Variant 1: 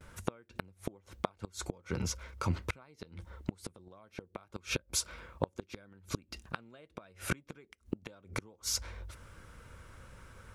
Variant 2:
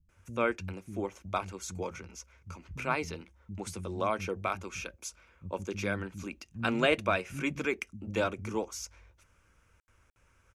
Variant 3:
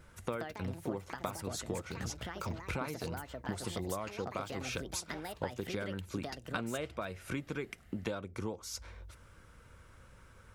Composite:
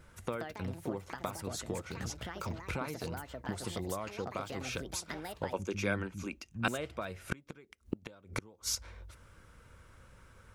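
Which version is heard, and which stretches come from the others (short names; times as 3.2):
3
5.53–6.68 from 2
7.32–8.75 from 1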